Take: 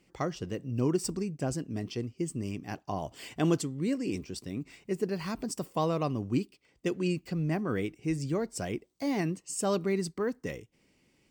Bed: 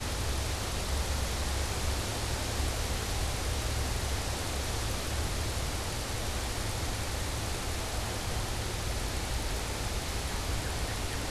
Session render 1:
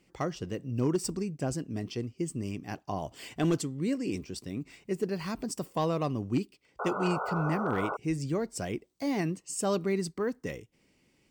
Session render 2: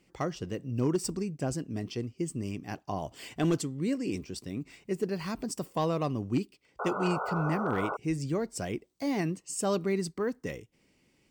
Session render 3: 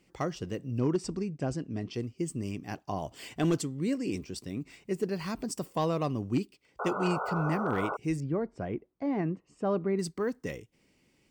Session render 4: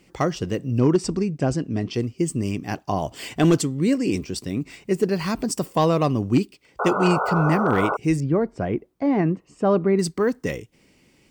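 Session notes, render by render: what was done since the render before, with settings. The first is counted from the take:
0:06.79–0:07.97: sound drawn into the spectrogram noise 390–1,500 Hz −34 dBFS; gain into a clipping stage and back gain 20 dB
no processing that can be heard
0:00.78–0:01.94: high-frequency loss of the air 85 metres; 0:08.20–0:09.99: low-pass filter 1,500 Hz
level +10 dB

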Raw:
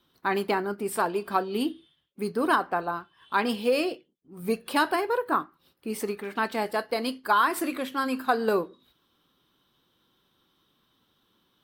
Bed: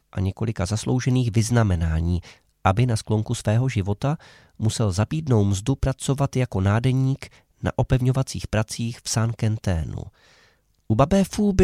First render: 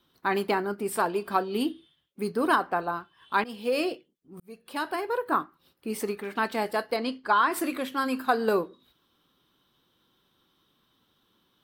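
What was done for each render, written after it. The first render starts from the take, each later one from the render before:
0:03.44–0:03.85: fade in, from −18 dB
0:04.40–0:05.37: fade in
0:06.96–0:07.52: high-frequency loss of the air 85 metres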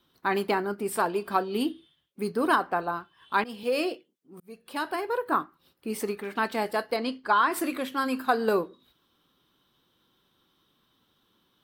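0:03.63–0:04.41: high-pass filter 200 Hz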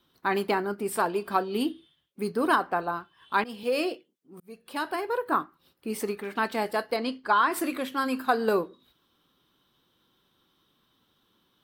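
no processing that can be heard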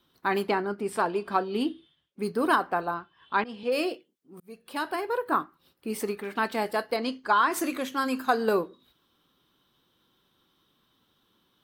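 0:00.48–0:02.23: high-frequency loss of the air 51 metres
0:02.94–0:03.72: high-frequency loss of the air 110 metres
0:07.03–0:08.43: parametric band 6,400 Hz +12 dB 0.28 octaves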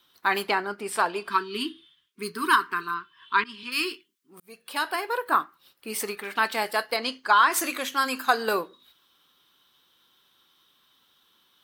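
0:01.30–0:04.29: gain on a spectral selection 450–920 Hz −28 dB
tilt shelving filter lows −8 dB, about 650 Hz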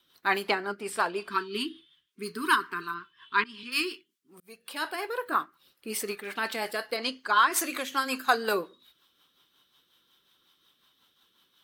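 rotating-speaker cabinet horn 5.5 Hz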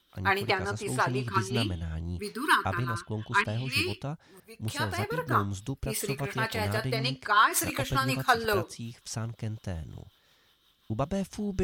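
mix in bed −12.5 dB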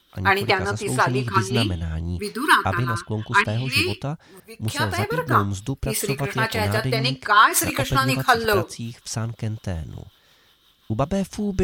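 level +7.5 dB
brickwall limiter −2 dBFS, peak gain reduction 1.5 dB

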